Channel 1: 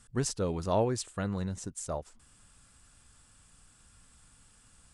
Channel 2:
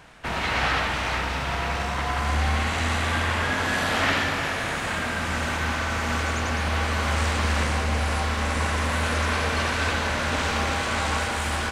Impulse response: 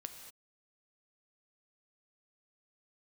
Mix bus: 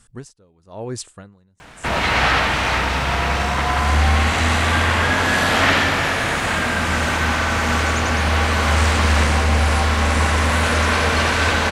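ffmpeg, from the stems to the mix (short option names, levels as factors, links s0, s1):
-filter_complex "[0:a]aeval=exprs='val(0)*pow(10,-30*(0.5-0.5*cos(2*PI*1*n/s))/20)':c=same,volume=1[s0];[1:a]adelay=1600,volume=0.841,asplit=2[s1][s2];[s2]volume=0.708[s3];[2:a]atrim=start_sample=2205[s4];[s3][s4]afir=irnorm=-1:irlink=0[s5];[s0][s1][s5]amix=inputs=3:normalize=0,acontrast=44"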